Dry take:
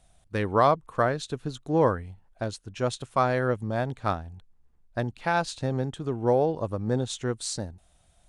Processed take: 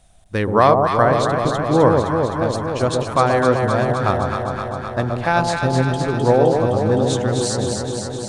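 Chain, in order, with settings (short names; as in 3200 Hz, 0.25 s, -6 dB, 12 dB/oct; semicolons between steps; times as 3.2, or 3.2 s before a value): echo with dull and thin repeats by turns 0.129 s, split 930 Hz, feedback 86%, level -3 dB; gain +7 dB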